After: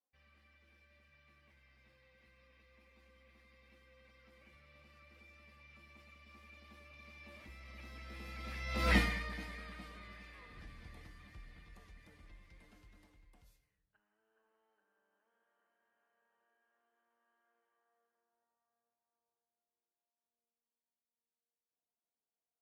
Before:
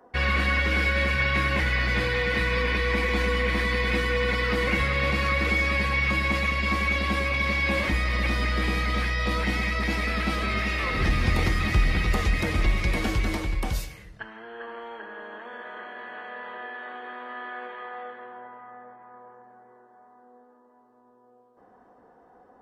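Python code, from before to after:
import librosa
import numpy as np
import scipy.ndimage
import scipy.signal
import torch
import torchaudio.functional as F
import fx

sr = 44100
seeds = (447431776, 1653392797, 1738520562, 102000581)

y = fx.doppler_pass(x, sr, speed_mps=19, closest_m=1.1, pass_at_s=8.94)
y = fx.high_shelf(y, sr, hz=11000.0, db=9.0)
y = fx.notch(y, sr, hz=380.0, q=12.0)
y = y * 10.0 ** (-1.0 / 20.0)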